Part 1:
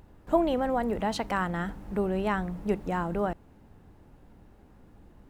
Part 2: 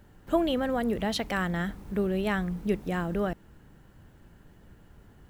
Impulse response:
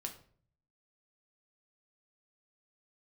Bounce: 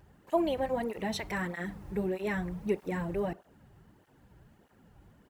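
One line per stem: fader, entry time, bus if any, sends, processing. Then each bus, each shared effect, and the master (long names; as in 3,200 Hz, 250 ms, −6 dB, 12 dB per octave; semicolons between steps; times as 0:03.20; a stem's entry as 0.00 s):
−5.0 dB, 0.00 s, send −7.5 dB, notch filter 3,900 Hz, Q 14
−3.5 dB, 0.3 ms, no send, parametric band 270 Hz −14.5 dB 0.76 octaves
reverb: on, RT60 0.50 s, pre-delay 5 ms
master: through-zero flanger with one copy inverted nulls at 1.6 Hz, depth 4.7 ms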